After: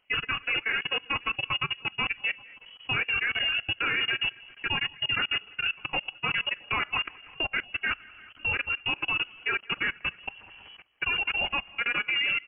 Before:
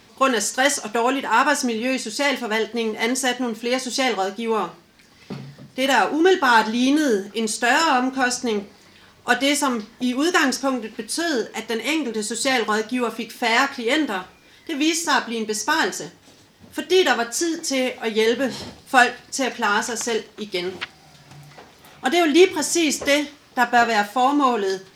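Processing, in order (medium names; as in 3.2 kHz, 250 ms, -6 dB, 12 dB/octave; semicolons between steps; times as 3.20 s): backward echo that repeats 185 ms, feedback 58%, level -10 dB; hum notches 60/120/180/240/300 Hz; level held to a coarse grid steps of 22 dB; frequency inversion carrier 3.1 kHz; tempo 2×; trim -4 dB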